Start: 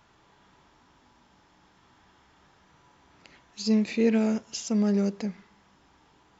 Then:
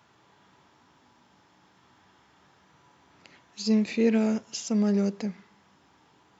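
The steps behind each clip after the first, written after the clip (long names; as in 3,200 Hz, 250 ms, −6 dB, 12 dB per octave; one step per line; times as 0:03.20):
high-pass filter 83 Hz 24 dB per octave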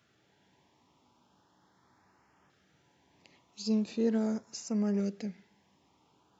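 auto-filter notch saw up 0.4 Hz 900–4,100 Hz
level −6 dB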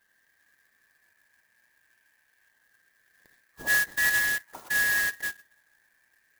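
band-splitting scrambler in four parts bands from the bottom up 4123
high shelf with overshoot 2,100 Hz −6 dB, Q 3
converter with an unsteady clock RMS 0.044 ms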